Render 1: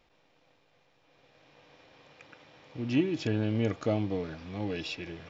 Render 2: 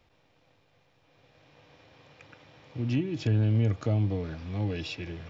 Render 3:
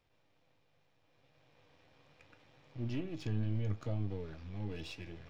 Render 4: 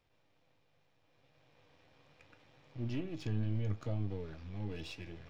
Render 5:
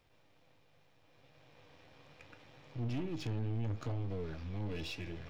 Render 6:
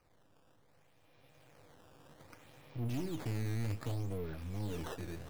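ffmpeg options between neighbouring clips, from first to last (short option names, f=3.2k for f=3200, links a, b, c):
-filter_complex "[0:a]equalizer=f=94:t=o:w=1.3:g=10,acrossover=split=180[a][b];[b]acompressor=threshold=-31dB:ratio=2.5[c];[a][c]amix=inputs=2:normalize=0"
-af "aeval=exprs='if(lt(val(0),0),0.447*val(0),val(0))':c=same,flanger=delay=6.4:depth=8.1:regen=72:speed=0.75:shape=triangular,volume=-3dB"
-af anull
-af "asoftclip=type=tanh:threshold=-38dB,volume=5.5dB"
-af "acrusher=samples=12:mix=1:aa=0.000001:lfo=1:lforange=19.2:lforate=0.64"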